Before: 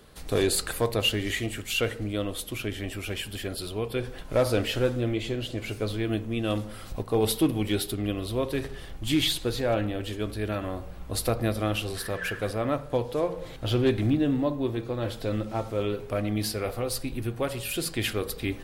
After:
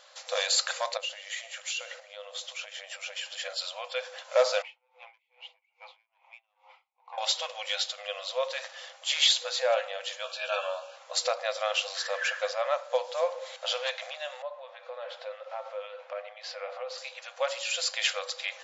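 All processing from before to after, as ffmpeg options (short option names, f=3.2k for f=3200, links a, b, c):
-filter_complex "[0:a]asettb=1/sr,asplit=3[a][b][c];[a]atrim=end=0.974[d];[b]atrim=start=0.97:end=3.4,asetpts=PTS-STARTPTS,afade=t=in:d=0.004:c=qsin,afade=t=out:st=2.426:d=0.004:c=qsin,equalizer=f=250:t=o:w=0.97:g=6,acompressor=threshold=-33dB:ratio=12:attack=3.2:release=140:knee=1:detection=peak,aecho=1:1:127:0.141,atrim=end_sample=107163[e];[c]atrim=start=3.396[f];[d][e]acrossfade=d=0.004:c1=hsin:c2=qsin[g];[g][f]acrossfade=d=0.004:c1=qsin:c2=hsin,asettb=1/sr,asplit=3[h][i][j];[h]atrim=end=4.624[k];[i]atrim=start=4.62:end=7.18,asetpts=PTS-STARTPTS,afade=t=in:d=0.004:c=qsin,afade=t=out:st=2.556:d=0.004:c=qsin,asplit=3[l][m][n];[l]bandpass=f=300:t=q:w=8,volume=0dB[o];[m]bandpass=f=870:t=q:w=8,volume=-6dB[p];[n]bandpass=f=2.24k:t=q:w=8,volume=-9dB[q];[o][p][q]amix=inputs=3:normalize=0,asplit=2[r][s];[s]highpass=f=720:p=1,volume=20dB,asoftclip=type=tanh:threshold=-21dB[t];[r][t]amix=inputs=2:normalize=0,lowpass=f=1.6k:p=1,volume=-6dB,aeval=exprs='val(0)*pow(10,-37*(0.5-0.5*cos(2*PI*2.4*n/s))/20)':c=same[u];[j]atrim=start=7.176[v];[k][u]acrossfade=d=0.004:c1=hsin:c2=qsin[w];[w][v]acrossfade=d=0.004:c1=qsin:c2=hsin,asettb=1/sr,asplit=3[x][y][z];[x]atrim=end=10.244[aa];[y]atrim=start=10.24:end=10.96,asetpts=PTS-STARTPTS,afade=t=in:d=0.004:c=qsin,afade=t=out:st=0.716:d=0.004:c=qsin,asuperstop=centerf=2000:order=8:qfactor=3.3,equalizer=f=2.6k:t=o:w=0.78:g=6,asplit=2[ab][ac];[ac]adelay=14,volume=-4dB[ad];[ab][ad]amix=inputs=2:normalize=0,atrim=end_sample=31752[ae];[z]atrim=start=10.956[af];[aa][ae]acrossfade=d=0.004:c1=hsin:c2=qsin[ag];[ag][af]acrossfade=d=0.004:c1=qsin:c2=hsin,asettb=1/sr,asplit=3[ah][ai][aj];[ah]atrim=end=14.424[ak];[ai]atrim=start=14.42:end=16.98,asetpts=PTS-STARTPTS,afade=t=in:d=0.004:c=qsin,afade=t=out:st=2.556:d=0.004:c=qsin,lowpass=2.6k,acompressor=threshold=-32dB:ratio=4:attack=3.2:release=140:knee=1:detection=peak[al];[aj]atrim=start=16.976[am];[ak][al]acrossfade=d=0.004:c1=hsin:c2=qsin[an];[an][am]acrossfade=d=0.004:c1=qsin:c2=hsin,aemphasis=mode=production:type=50kf,afftfilt=real='re*between(b*sr/4096,490,7500)':imag='im*between(b*sr/4096,490,7500)':win_size=4096:overlap=0.75,volume=1dB"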